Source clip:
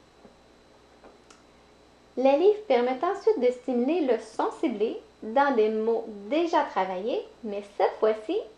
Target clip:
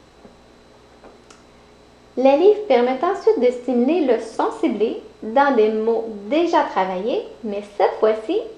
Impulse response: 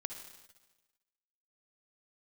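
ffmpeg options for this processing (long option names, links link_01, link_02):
-filter_complex "[0:a]asplit=2[link_01][link_02];[1:a]atrim=start_sample=2205,asetrate=66150,aresample=44100,lowshelf=frequency=230:gain=7.5[link_03];[link_02][link_03]afir=irnorm=-1:irlink=0,volume=-2.5dB[link_04];[link_01][link_04]amix=inputs=2:normalize=0,volume=4dB"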